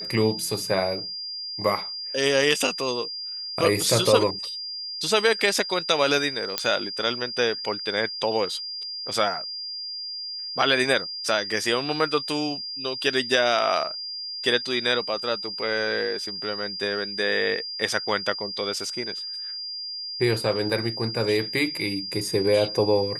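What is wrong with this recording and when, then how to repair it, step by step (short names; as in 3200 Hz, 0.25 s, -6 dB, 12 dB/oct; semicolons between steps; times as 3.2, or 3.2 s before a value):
tone 4800 Hz -31 dBFS
6.58 pop -5 dBFS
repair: de-click; notch 4800 Hz, Q 30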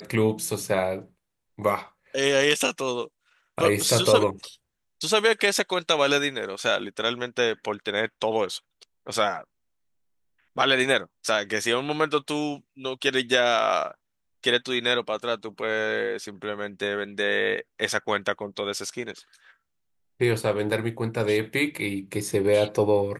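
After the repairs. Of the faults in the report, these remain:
none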